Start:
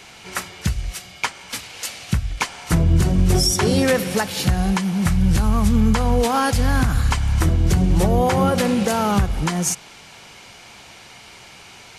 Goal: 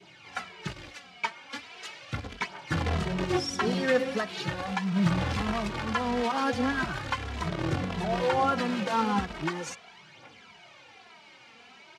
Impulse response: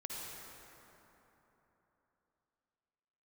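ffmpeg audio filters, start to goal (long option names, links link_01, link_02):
-filter_complex "[0:a]adynamicequalizer=threshold=0.0178:dfrequency=1300:dqfactor=0.72:tfrequency=1300:tqfactor=0.72:attack=5:release=100:ratio=0.375:range=1.5:mode=boostabove:tftype=bell,asplit=3[link_01][link_02][link_03];[link_01]afade=type=out:start_time=7.15:duration=0.02[link_04];[link_02]acompressor=threshold=-15dB:ratio=16,afade=type=in:start_time=7.15:duration=0.02,afade=type=out:start_time=8.11:duration=0.02[link_05];[link_03]afade=type=in:start_time=8.11:duration=0.02[link_06];[link_04][link_05][link_06]amix=inputs=3:normalize=0,aphaser=in_gain=1:out_gain=1:delay=4.5:decay=0.53:speed=0.39:type=triangular,acrusher=bits=2:mode=log:mix=0:aa=0.000001,highpass=150,lowpass=3700,asplit=2[link_07][link_08];[link_08]adelay=2.7,afreqshift=-1.6[link_09];[link_07][link_09]amix=inputs=2:normalize=1,volume=-6.5dB"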